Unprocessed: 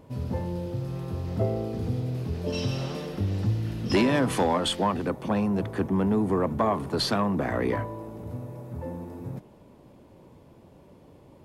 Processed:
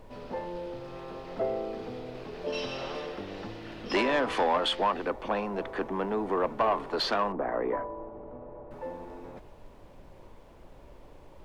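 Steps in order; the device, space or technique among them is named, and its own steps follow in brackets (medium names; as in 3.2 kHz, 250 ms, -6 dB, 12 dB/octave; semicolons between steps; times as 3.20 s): aircraft cabin announcement (band-pass 470–3700 Hz; saturation -19.5 dBFS, distortion -18 dB; brown noise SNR 18 dB); 7.32–8.71 s: low-pass 1.1 kHz 12 dB/octave; trim +2.5 dB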